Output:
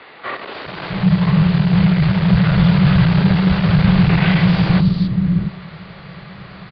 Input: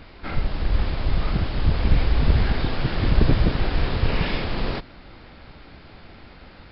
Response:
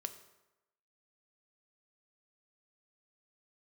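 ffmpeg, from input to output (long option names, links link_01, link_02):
-filter_complex "[0:a]equalizer=frequency=180:width_type=o:width=1:gain=-13.5,bandreject=frequency=50.89:width_type=h:width=4,bandreject=frequency=101.78:width_type=h:width=4,bandreject=frequency=152.67:width_type=h:width=4,bandreject=frequency=203.56:width_type=h:width=4,bandreject=frequency=254.45:width_type=h:width=4,bandreject=frequency=305.34:width_type=h:width=4,bandreject=frequency=356.23:width_type=h:width=4,bandreject=frequency=407.12:width_type=h:width=4,bandreject=frequency=458.01:width_type=h:width=4,bandreject=frequency=508.9:width_type=h:width=4,bandreject=frequency=559.79:width_type=h:width=4,bandreject=frequency=610.68:width_type=h:width=4,bandreject=frequency=661.57:width_type=h:width=4,bandreject=frequency=712.46:width_type=h:width=4,bandreject=frequency=763.35:width_type=h:width=4,bandreject=frequency=814.24:width_type=h:width=4,bandreject=frequency=865.13:width_type=h:width=4,bandreject=frequency=916.02:width_type=h:width=4,bandreject=frequency=966.91:width_type=h:width=4,bandreject=frequency=1017.8:width_type=h:width=4,bandreject=frequency=1068.69:width_type=h:width=4,bandreject=frequency=1119.58:width_type=h:width=4,bandreject=frequency=1170.47:width_type=h:width=4,bandreject=frequency=1221.36:width_type=h:width=4,bandreject=frequency=1272.25:width_type=h:width=4,bandreject=frequency=1323.14:width_type=h:width=4,bandreject=frequency=1374.03:width_type=h:width=4,bandreject=frequency=1424.92:width_type=h:width=4,bandreject=frequency=1475.81:width_type=h:width=4,bandreject=frequency=1526.7:width_type=h:width=4,bandreject=frequency=1577.59:width_type=h:width=4,bandreject=frequency=1628.48:width_type=h:width=4,aresample=11025,aeval=exprs='0.562*sin(PI/2*3.16*val(0)/0.562)':channel_layout=same,aresample=44100,acrossover=split=460|4300[link_01][link_02][link_03];[link_03]adelay=270[link_04];[link_01]adelay=660[link_05];[link_05][link_02][link_04]amix=inputs=3:normalize=0,afreqshift=-200,asplit=2[link_06][link_07];[1:a]atrim=start_sample=2205[link_08];[link_07][link_08]afir=irnorm=-1:irlink=0,volume=2.5dB[link_09];[link_06][link_09]amix=inputs=2:normalize=0,volume=-9dB"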